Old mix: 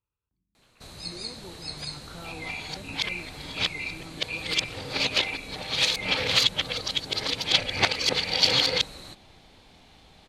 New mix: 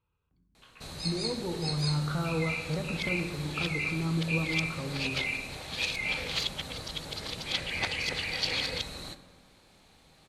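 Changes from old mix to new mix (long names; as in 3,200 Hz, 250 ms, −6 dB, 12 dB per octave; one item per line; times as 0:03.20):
speech +7.5 dB
second sound −11.0 dB
reverb: on, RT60 1.4 s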